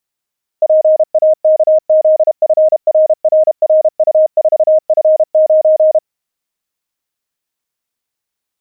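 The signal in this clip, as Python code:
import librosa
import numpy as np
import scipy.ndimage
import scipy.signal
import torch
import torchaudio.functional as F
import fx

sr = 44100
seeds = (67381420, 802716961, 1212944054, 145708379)

y = fx.morse(sr, text='PAKZFRRRU4F9', wpm=32, hz=624.0, level_db=-5.0)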